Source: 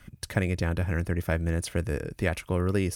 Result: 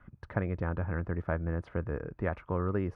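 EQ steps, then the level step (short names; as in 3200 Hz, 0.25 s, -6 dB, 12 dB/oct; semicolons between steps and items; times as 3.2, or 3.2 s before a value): synth low-pass 1200 Hz, resonance Q 2; -5.5 dB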